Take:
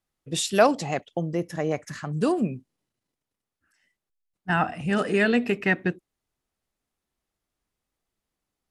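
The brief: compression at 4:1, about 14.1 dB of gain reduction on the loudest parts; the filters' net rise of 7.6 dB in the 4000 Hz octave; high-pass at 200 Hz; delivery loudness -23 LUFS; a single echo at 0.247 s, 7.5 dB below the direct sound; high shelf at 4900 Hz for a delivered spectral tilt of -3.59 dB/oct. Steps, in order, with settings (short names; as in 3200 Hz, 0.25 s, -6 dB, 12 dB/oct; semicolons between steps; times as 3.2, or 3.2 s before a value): HPF 200 Hz; bell 4000 Hz +6 dB; high shelf 4900 Hz +7.5 dB; compressor 4:1, threshold -29 dBFS; echo 0.247 s -7.5 dB; gain +9.5 dB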